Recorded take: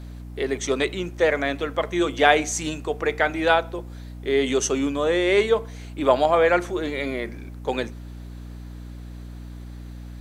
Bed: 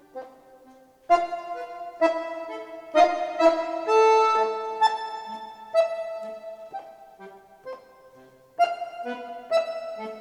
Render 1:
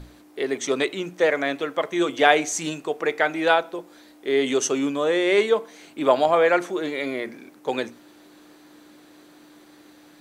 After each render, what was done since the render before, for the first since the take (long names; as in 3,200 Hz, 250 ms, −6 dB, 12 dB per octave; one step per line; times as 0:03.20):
mains-hum notches 60/120/180/240 Hz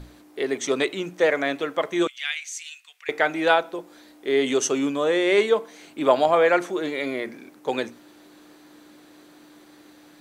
0:02.07–0:03.09: four-pole ladder high-pass 1,900 Hz, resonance 35%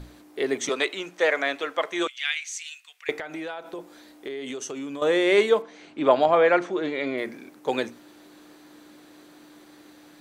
0:00.69–0:02.67: meter weighting curve A
0:03.19–0:05.02: downward compressor 12 to 1, threshold −30 dBFS
0:05.62–0:07.18: high-frequency loss of the air 110 metres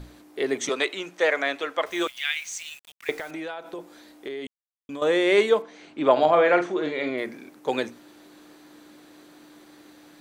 0:01.86–0:03.31: bit-depth reduction 8 bits, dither none
0:04.47–0:04.89: silence
0:06.12–0:07.10: double-tracking delay 46 ms −9 dB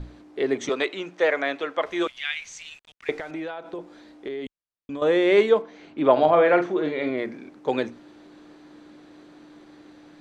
low-pass filter 6,200 Hz 12 dB per octave
spectral tilt −1.5 dB per octave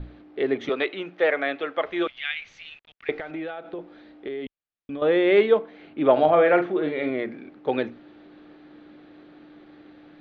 low-pass filter 3,700 Hz 24 dB per octave
notch filter 990 Hz, Q 8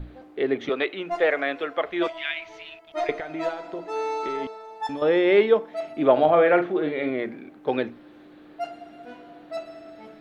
mix in bed −10.5 dB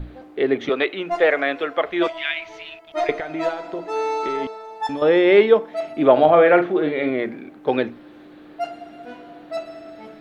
level +4.5 dB
brickwall limiter −2 dBFS, peak gain reduction 1 dB